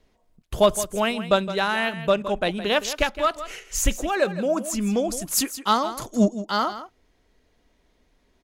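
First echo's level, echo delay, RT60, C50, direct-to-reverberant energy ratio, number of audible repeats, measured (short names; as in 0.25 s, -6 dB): -13.0 dB, 0.164 s, none, none, none, 1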